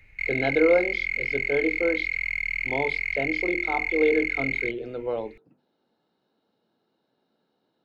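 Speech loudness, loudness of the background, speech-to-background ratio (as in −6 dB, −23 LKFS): −27.5 LKFS, −26.5 LKFS, −1.0 dB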